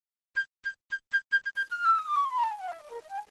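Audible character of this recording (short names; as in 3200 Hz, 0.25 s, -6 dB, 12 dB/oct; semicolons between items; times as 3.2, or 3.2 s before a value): tremolo triangle 3.8 Hz, depth 90%; a quantiser's noise floor 10-bit, dither none; Opus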